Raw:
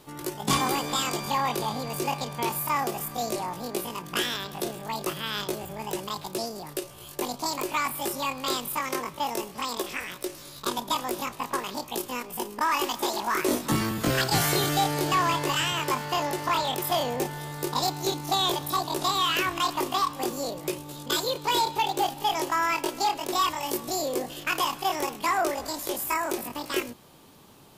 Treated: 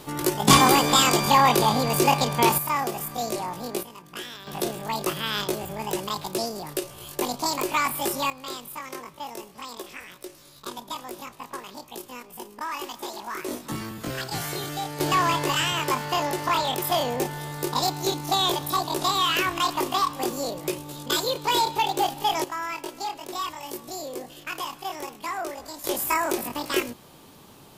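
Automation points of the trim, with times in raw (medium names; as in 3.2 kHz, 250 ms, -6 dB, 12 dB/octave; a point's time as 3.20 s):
+9 dB
from 2.58 s +1 dB
from 3.83 s -9 dB
from 4.47 s +3.5 dB
from 8.30 s -7 dB
from 15.00 s +2 dB
from 22.44 s -6 dB
from 25.84 s +3.5 dB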